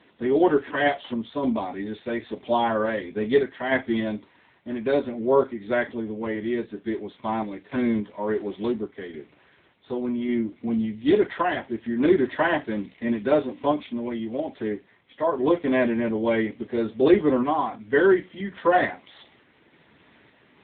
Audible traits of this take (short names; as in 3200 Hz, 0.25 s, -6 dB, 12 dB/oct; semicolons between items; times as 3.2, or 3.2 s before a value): random-step tremolo; AMR-NB